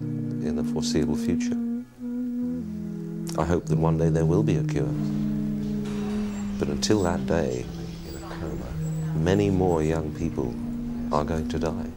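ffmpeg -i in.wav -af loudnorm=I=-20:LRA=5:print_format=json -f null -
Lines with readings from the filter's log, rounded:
"input_i" : "-26.4",
"input_tp" : "-8.5",
"input_lra" : "2.4",
"input_thresh" : "-36.4",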